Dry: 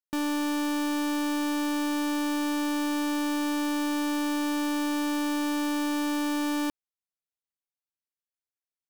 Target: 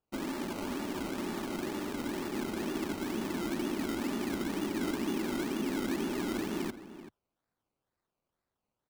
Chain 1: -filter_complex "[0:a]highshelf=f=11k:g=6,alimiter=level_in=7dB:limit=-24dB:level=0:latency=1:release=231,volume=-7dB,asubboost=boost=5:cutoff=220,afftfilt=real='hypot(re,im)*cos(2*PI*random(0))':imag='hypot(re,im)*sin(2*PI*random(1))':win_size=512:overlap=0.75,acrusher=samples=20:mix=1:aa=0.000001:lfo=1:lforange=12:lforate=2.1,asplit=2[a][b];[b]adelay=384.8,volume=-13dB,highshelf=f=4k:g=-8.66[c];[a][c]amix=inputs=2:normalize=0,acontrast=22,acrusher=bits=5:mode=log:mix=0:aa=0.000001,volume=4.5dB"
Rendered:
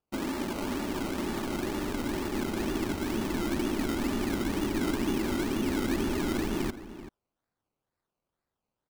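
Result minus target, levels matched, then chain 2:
125 Hz band +3.5 dB
-filter_complex "[0:a]highpass=f=68:w=0.5412,highpass=f=68:w=1.3066,highshelf=f=11k:g=6,alimiter=level_in=7dB:limit=-24dB:level=0:latency=1:release=231,volume=-7dB,asubboost=boost=5:cutoff=220,afftfilt=real='hypot(re,im)*cos(2*PI*random(0))':imag='hypot(re,im)*sin(2*PI*random(1))':win_size=512:overlap=0.75,acrusher=samples=20:mix=1:aa=0.000001:lfo=1:lforange=12:lforate=2.1,asplit=2[a][b];[b]adelay=384.8,volume=-13dB,highshelf=f=4k:g=-8.66[c];[a][c]amix=inputs=2:normalize=0,acontrast=22,acrusher=bits=5:mode=log:mix=0:aa=0.000001,volume=4.5dB"

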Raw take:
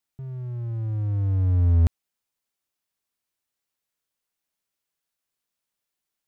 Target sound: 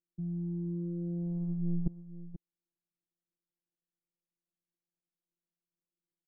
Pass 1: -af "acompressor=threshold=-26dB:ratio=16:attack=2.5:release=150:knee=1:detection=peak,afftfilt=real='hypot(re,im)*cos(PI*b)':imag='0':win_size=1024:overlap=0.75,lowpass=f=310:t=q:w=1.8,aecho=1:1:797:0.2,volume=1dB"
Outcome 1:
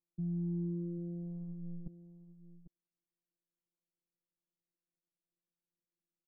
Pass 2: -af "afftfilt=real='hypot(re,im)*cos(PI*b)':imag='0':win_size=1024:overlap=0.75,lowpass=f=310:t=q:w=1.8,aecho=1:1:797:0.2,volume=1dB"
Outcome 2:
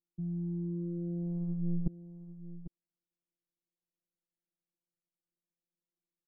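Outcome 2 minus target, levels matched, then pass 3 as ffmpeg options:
echo 0.314 s late
-af "afftfilt=real='hypot(re,im)*cos(PI*b)':imag='0':win_size=1024:overlap=0.75,lowpass=f=310:t=q:w=1.8,aecho=1:1:483:0.2,volume=1dB"

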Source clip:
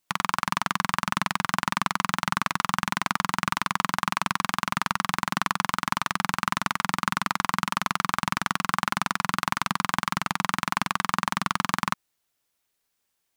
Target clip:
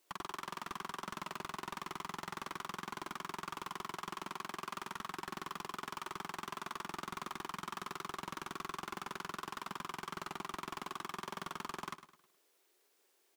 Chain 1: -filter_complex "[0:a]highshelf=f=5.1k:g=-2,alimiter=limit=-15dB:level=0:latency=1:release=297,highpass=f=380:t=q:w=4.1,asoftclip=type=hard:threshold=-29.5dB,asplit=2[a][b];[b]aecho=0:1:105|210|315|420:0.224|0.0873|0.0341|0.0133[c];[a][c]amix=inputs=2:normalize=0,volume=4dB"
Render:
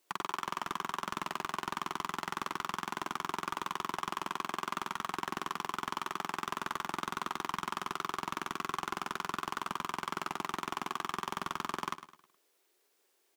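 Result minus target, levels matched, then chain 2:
hard clip: distortion -5 dB
-filter_complex "[0:a]highshelf=f=5.1k:g=-2,alimiter=limit=-15dB:level=0:latency=1:release=297,highpass=f=380:t=q:w=4.1,asoftclip=type=hard:threshold=-39.5dB,asplit=2[a][b];[b]aecho=0:1:105|210|315|420:0.224|0.0873|0.0341|0.0133[c];[a][c]amix=inputs=2:normalize=0,volume=4dB"

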